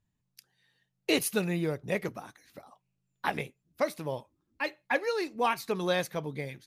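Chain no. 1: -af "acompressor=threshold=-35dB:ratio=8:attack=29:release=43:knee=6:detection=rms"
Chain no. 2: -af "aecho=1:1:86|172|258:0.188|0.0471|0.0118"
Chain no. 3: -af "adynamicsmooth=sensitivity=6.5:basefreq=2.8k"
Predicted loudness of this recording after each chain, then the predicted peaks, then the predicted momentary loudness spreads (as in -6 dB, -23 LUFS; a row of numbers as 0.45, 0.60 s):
-38.0, -31.5, -32.0 LUFS; -19.0, -13.5, -14.0 dBFS; 10, 11, 10 LU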